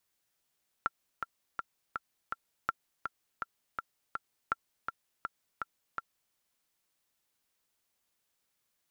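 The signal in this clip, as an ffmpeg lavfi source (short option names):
-f lavfi -i "aevalsrc='pow(10,(-15.5-6*gte(mod(t,5*60/164),60/164))/20)*sin(2*PI*1360*mod(t,60/164))*exp(-6.91*mod(t,60/164)/0.03)':d=5.48:s=44100"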